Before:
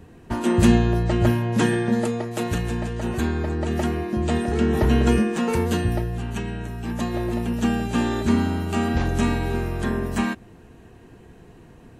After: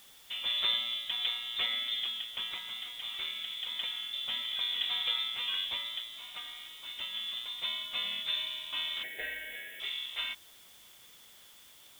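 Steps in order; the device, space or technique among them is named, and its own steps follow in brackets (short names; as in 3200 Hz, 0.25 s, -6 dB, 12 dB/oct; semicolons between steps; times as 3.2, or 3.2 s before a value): scrambled radio voice (BPF 330–3100 Hz; inverted band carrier 3800 Hz; white noise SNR 21 dB); 9.03–9.8 EQ curve 220 Hz 0 dB, 450 Hz +14 dB, 730 Hz +5 dB, 1200 Hz -25 dB, 1700 Hz +14 dB, 3600 Hz -17 dB, 12000 Hz +6 dB; gain -8.5 dB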